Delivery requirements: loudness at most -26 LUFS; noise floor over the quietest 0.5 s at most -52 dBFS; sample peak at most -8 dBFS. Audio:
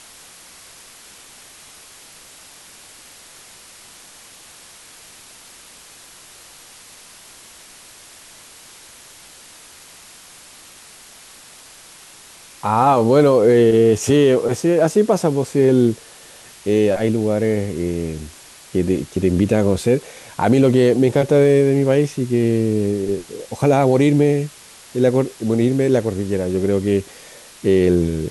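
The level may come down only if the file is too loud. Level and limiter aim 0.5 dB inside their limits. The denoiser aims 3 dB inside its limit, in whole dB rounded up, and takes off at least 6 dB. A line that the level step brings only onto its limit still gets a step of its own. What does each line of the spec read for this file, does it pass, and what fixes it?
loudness -17.0 LUFS: fail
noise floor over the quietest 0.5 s -43 dBFS: fail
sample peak -4.5 dBFS: fail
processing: gain -9.5 dB

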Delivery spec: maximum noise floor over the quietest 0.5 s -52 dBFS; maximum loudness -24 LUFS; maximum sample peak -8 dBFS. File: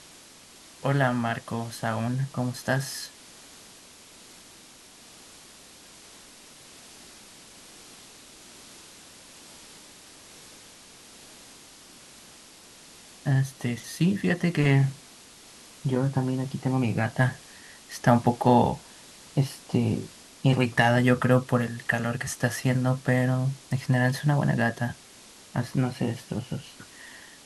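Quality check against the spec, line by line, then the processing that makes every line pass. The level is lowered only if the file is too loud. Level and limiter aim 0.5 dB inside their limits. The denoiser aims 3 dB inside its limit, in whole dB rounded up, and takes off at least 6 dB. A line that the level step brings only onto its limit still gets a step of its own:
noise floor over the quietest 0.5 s -51 dBFS: fail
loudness -26.0 LUFS: OK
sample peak -6.0 dBFS: fail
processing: denoiser 6 dB, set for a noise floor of -51 dBFS; limiter -8.5 dBFS

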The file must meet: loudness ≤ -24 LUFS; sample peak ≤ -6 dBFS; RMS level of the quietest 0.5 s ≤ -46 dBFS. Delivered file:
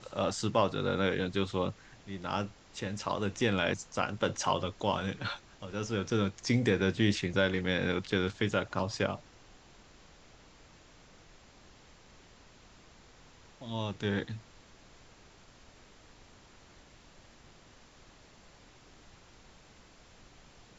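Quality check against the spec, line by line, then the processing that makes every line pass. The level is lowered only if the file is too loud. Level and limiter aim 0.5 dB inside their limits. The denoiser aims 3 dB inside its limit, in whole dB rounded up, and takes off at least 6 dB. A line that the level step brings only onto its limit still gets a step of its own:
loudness -32.5 LUFS: OK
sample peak -13.5 dBFS: OK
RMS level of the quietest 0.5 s -57 dBFS: OK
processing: none

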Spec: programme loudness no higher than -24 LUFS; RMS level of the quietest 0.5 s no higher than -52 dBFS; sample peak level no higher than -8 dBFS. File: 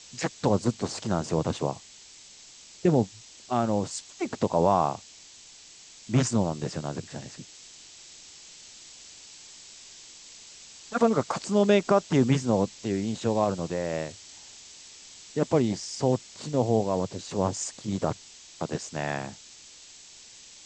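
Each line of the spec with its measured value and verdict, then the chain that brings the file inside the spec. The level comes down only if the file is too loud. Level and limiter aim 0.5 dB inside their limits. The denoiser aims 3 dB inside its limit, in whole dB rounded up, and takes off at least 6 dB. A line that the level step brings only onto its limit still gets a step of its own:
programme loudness -27.5 LUFS: OK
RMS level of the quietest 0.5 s -50 dBFS: fail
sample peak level -9.0 dBFS: OK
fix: denoiser 6 dB, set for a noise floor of -50 dBFS

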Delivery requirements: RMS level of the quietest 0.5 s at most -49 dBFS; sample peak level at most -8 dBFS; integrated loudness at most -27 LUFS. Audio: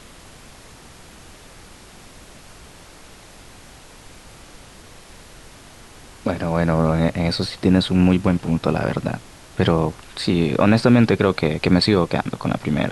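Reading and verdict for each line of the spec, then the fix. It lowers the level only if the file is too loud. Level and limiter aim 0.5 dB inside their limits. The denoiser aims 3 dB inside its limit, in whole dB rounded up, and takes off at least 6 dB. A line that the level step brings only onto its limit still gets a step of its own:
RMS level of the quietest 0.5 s -43 dBFS: fail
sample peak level -3.5 dBFS: fail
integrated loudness -19.5 LUFS: fail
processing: gain -8 dB

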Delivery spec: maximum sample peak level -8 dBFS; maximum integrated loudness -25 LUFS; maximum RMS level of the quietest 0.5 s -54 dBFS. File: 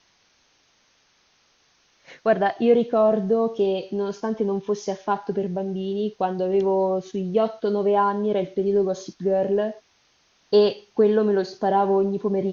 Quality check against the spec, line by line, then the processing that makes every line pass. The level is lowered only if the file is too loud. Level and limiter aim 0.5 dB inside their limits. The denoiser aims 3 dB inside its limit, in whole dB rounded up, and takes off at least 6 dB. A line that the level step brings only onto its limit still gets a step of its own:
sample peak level -7.0 dBFS: fail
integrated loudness -23.0 LUFS: fail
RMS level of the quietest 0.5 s -63 dBFS: OK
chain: gain -2.5 dB

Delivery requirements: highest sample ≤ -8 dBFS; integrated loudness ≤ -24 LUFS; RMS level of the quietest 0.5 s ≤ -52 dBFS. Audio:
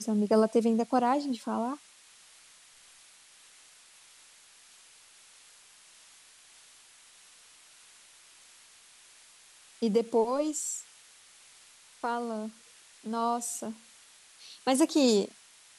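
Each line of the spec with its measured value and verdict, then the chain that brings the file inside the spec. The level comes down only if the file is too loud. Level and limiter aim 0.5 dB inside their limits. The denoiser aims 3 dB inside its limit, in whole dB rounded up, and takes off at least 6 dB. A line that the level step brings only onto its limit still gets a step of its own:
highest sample -12.5 dBFS: OK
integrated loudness -29.0 LUFS: OK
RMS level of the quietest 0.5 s -57 dBFS: OK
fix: none

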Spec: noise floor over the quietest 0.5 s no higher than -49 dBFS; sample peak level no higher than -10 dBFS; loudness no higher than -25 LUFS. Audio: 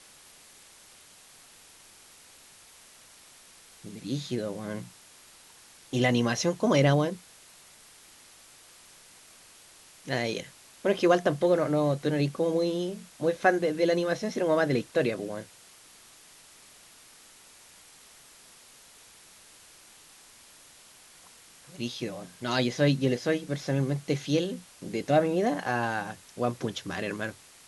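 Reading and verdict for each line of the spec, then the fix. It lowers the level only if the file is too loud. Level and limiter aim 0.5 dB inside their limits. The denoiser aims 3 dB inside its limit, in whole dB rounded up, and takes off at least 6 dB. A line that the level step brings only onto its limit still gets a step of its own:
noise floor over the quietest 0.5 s -54 dBFS: OK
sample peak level -8.5 dBFS: fail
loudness -28.0 LUFS: OK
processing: limiter -10.5 dBFS

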